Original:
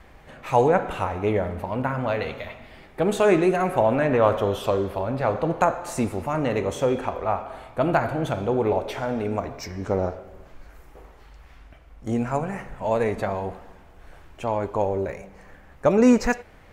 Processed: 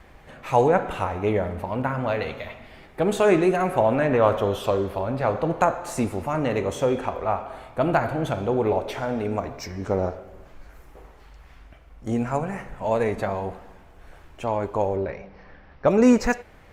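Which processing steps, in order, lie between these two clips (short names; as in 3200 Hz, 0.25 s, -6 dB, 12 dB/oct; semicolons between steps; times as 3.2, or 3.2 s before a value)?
14.96–15.88 steep low-pass 5700 Hz 96 dB/oct; Opus 64 kbps 48000 Hz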